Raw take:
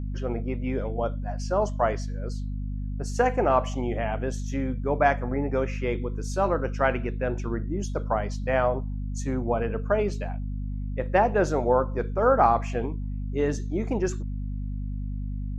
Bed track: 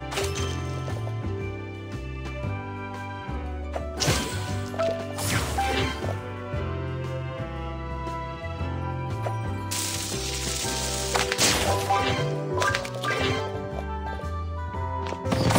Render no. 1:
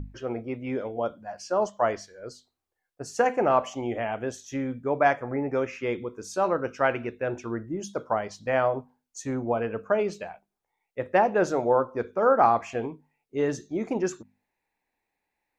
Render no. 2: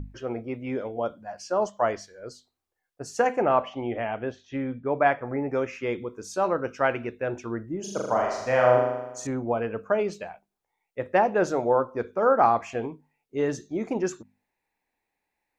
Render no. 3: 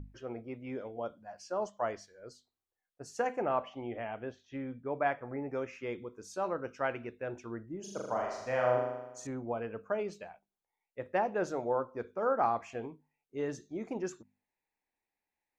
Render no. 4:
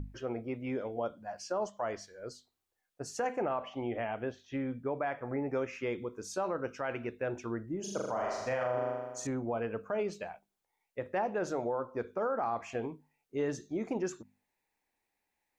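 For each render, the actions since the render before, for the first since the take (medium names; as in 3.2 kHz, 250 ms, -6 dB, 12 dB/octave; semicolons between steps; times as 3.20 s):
hum notches 50/100/150/200/250 Hz
3.42–5.25 s: low-pass 3.8 kHz 24 dB/octave; 7.80–9.27 s: flutter echo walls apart 6.9 m, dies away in 1 s
trim -9.5 dB
in parallel at 0 dB: compression, threshold -40 dBFS, peak gain reduction 15.5 dB; on the sum: peak limiter -24 dBFS, peak gain reduction 8 dB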